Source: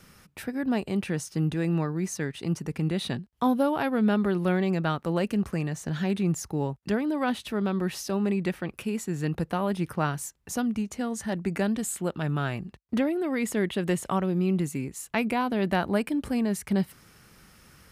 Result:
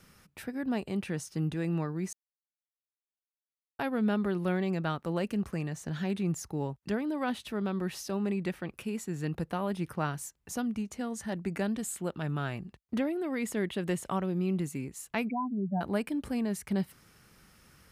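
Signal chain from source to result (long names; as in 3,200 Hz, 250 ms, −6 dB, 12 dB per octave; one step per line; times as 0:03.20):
0:02.13–0:03.79: silence
0:15.29–0:15.81: expanding power law on the bin magnitudes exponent 4
level −5 dB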